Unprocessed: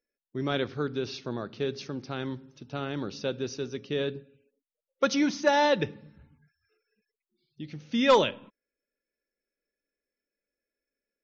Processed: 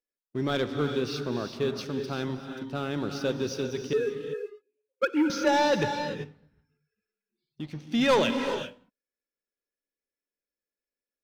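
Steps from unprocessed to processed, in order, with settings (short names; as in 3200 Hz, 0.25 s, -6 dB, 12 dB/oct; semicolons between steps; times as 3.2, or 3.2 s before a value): 3.93–5.3 sine-wave speech; sample leveller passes 2; non-linear reverb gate 0.42 s rising, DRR 6.5 dB; gain -5 dB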